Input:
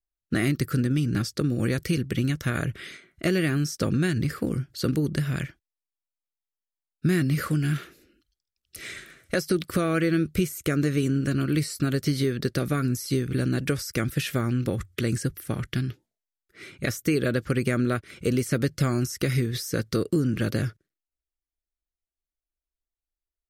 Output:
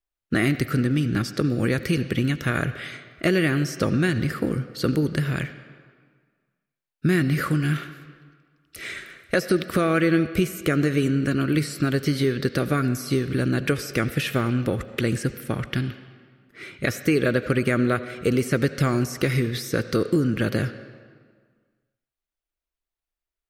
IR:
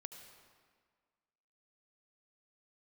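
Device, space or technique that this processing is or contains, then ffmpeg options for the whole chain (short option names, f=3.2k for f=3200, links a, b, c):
filtered reverb send: -filter_complex "[0:a]asplit=2[a][b];[b]highpass=f=390:p=1,lowpass=4k[c];[1:a]atrim=start_sample=2205[d];[c][d]afir=irnorm=-1:irlink=0,volume=4.5dB[e];[a][e]amix=inputs=2:normalize=0"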